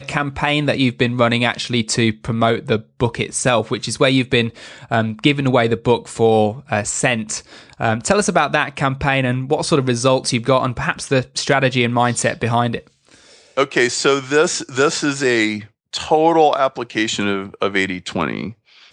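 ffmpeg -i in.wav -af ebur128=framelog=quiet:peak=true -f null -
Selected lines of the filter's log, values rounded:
Integrated loudness:
  I:         -17.7 LUFS
  Threshold: -28.0 LUFS
Loudness range:
  LRA:         1.4 LU
  Threshold: -37.9 LUFS
  LRA low:   -18.5 LUFS
  LRA high:  -17.1 LUFS
True peak:
  Peak:       -1.6 dBFS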